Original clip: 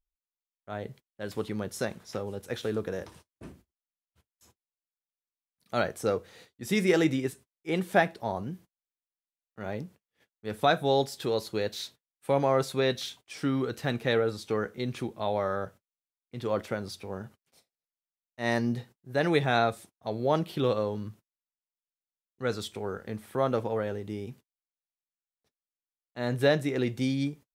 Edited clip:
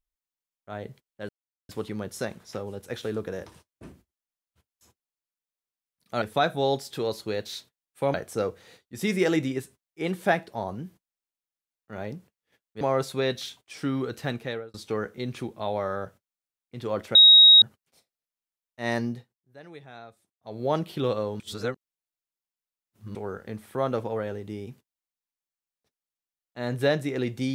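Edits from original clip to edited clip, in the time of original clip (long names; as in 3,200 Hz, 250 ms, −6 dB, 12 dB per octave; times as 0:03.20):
0:01.29: splice in silence 0.40 s
0:10.49–0:12.41: move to 0:05.82
0:13.87–0:14.34: fade out
0:16.75–0:17.22: beep over 3,790 Hz −9.5 dBFS
0:18.63–0:20.25: duck −20.5 dB, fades 0.25 s
0:21.00–0:22.75: reverse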